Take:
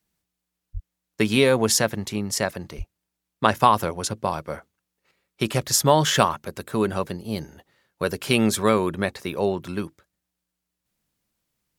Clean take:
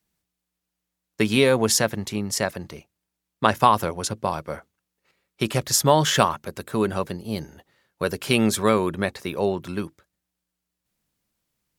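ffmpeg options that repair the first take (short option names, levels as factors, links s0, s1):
-filter_complex "[0:a]asplit=3[s0][s1][s2];[s0]afade=t=out:st=0.73:d=0.02[s3];[s1]highpass=f=140:w=0.5412,highpass=f=140:w=1.3066,afade=t=in:st=0.73:d=0.02,afade=t=out:st=0.85:d=0.02[s4];[s2]afade=t=in:st=0.85:d=0.02[s5];[s3][s4][s5]amix=inputs=3:normalize=0,asplit=3[s6][s7][s8];[s6]afade=t=out:st=2.77:d=0.02[s9];[s7]highpass=f=140:w=0.5412,highpass=f=140:w=1.3066,afade=t=in:st=2.77:d=0.02,afade=t=out:st=2.89:d=0.02[s10];[s8]afade=t=in:st=2.89:d=0.02[s11];[s9][s10][s11]amix=inputs=3:normalize=0"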